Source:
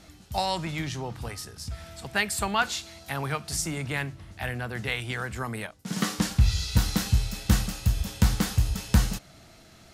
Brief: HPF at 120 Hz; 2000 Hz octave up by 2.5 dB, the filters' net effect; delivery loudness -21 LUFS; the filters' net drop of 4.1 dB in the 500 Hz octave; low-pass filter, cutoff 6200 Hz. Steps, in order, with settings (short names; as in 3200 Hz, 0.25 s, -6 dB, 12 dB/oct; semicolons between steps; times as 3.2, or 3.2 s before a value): HPF 120 Hz; LPF 6200 Hz; bell 500 Hz -5.5 dB; bell 2000 Hz +3.5 dB; gain +9.5 dB